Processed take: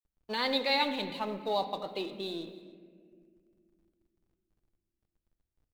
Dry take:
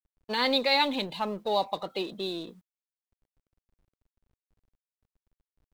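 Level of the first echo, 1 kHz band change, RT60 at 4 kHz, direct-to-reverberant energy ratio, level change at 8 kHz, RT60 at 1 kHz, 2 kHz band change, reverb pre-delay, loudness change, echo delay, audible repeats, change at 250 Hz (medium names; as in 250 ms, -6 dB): -21.0 dB, -4.0 dB, 1.1 s, 8.5 dB, no reading, 1.5 s, -3.5 dB, 3 ms, -4.0 dB, 290 ms, 1, -3.5 dB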